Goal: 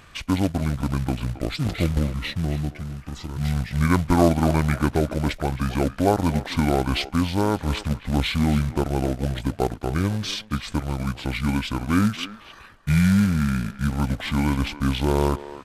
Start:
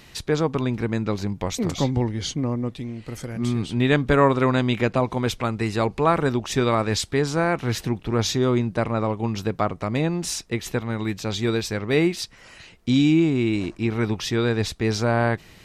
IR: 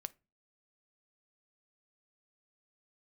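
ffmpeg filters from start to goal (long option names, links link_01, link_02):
-filter_complex "[0:a]acrusher=bits=4:mode=log:mix=0:aa=0.000001,asetrate=26990,aresample=44100,atempo=1.63392,asplit=2[link_01][link_02];[link_02]adelay=270,highpass=300,lowpass=3400,asoftclip=type=hard:threshold=-13.5dB,volume=-13dB[link_03];[link_01][link_03]amix=inputs=2:normalize=0"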